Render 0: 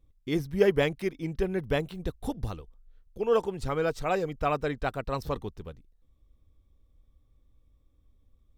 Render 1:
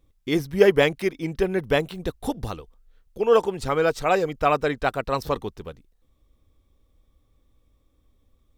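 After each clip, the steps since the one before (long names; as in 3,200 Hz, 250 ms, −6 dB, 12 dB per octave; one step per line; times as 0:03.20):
low-shelf EQ 190 Hz −9 dB
level +8 dB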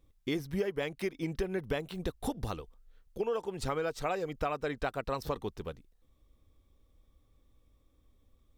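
downward compressor 16 to 1, threshold −26 dBFS, peak gain reduction 17.5 dB
level −3 dB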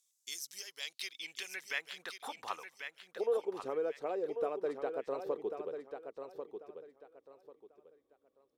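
band-pass filter sweep 6,700 Hz → 410 Hz, 0:00.44–0:03.52
RIAA equalisation recording
repeating echo 1,092 ms, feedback 25%, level −7.5 dB
level +5 dB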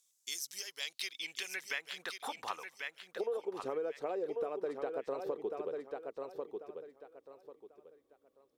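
downward compressor 6 to 1, threshold −36 dBFS, peak gain reduction 9 dB
level +3 dB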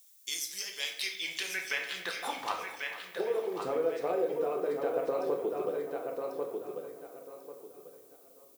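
repeating echo 450 ms, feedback 48%, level −15.5 dB
rectangular room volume 180 cubic metres, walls mixed, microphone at 0.8 metres
background noise violet −64 dBFS
level +3.5 dB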